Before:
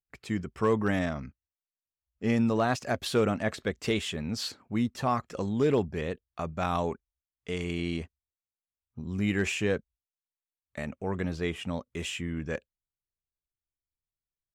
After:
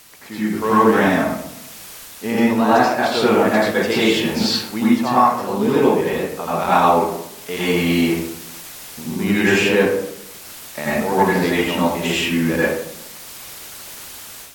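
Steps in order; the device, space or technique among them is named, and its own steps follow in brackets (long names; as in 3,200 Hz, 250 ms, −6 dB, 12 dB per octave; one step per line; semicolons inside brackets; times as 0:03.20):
filmed off a television (band-pass filter 240–6,700 Hz; parametric band 910 Hz +7 dB 0.23 octaves; convolution reverb RT60 0.75 s, pre-delay 78 ms, DRR −9 dB; white noise bed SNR 21 dB; automatic gain control gain up to 10.5 dB; level −1 dB; AAC 64 kbit/s 48,000 Hz)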